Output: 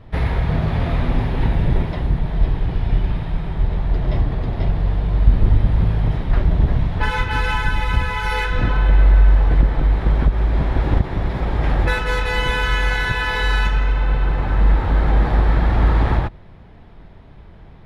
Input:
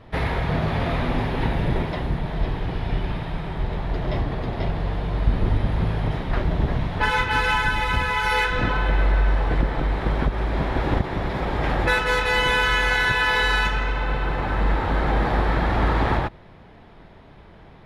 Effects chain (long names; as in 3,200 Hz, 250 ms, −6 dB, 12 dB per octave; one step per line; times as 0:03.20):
low-shelf EQ 150 Hz +11 dB
level −2 dB